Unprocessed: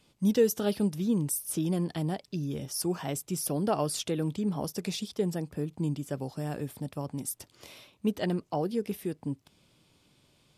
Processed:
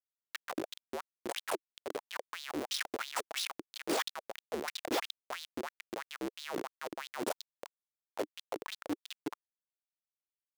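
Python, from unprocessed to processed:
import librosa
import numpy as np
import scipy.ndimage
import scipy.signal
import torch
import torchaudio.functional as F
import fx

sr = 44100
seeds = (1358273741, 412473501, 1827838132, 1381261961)

y = fx.cycle_switch(x, sr, every=2, mode='inverted')
y = fx.over_compress(y, sr, threshold_db=-35.0, ratio=-1.0)
y = scipy.signal.sosfilt(scipy.signal.butter(2, 9700.0, 'lowpass', fs=sr, output='sos'), y)
y = fx.schmitt(y, sr, flips_db=-30.0)
y = fx.filter_lfo_highpass(y, sr, shape='sine', hz=3.0, low_hz=300.0, high_hz=4000.0, q=4.5)
y = y * 10.0 ** (3.0 / 20.0)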